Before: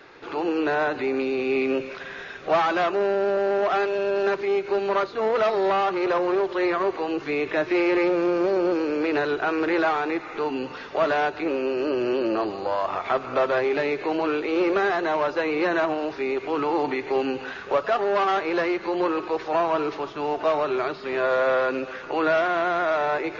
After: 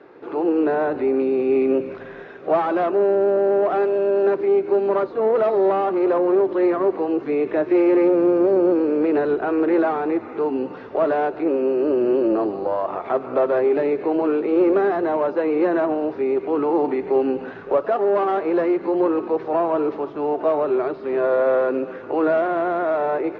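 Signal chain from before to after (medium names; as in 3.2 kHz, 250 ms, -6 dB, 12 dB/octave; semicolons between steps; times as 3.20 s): band-pass filter 360 Hz, Q 0.83; on a send: frequency-shifting echo 147 ms, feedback 48%, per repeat -78 Hz, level -23 dB; on the sum: trim +6 dB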